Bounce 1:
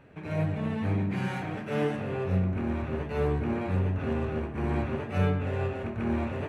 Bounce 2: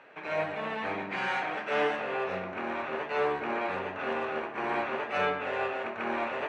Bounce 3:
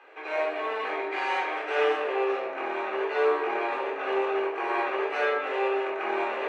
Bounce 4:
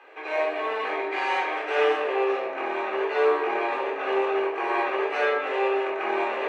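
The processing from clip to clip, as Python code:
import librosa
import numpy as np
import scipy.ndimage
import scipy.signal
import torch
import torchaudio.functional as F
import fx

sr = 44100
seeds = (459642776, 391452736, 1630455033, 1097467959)

y1 = scipy.signal.sosfilt(scipy.signal.butter(2, 690.0, 'highpass', fs=sr, output='sos'), x)
y1 = fx.air_absorb(y1, sr, metres=120.0)
y1 = y1 * 10.0 ** (8.5 / 20.0)
y2 = scipy.signal.sosfilt(scipy.signal.butter(8, 300.0, 'highpass', fs=sr, output='sos'), y1)
y2 = fx.room_shoebox(y2, sr, seeds[0], volume_m3=880.0, walls='furnished', distance_m=3.8)
y2 = y2 * 10.0 ** (-2.0 / 20.0)
y3 = fx.notch(y2, sr, hz=1400.0, q=13.0)
y3 = y3 * 10.0 ** (2.5 / 20.0)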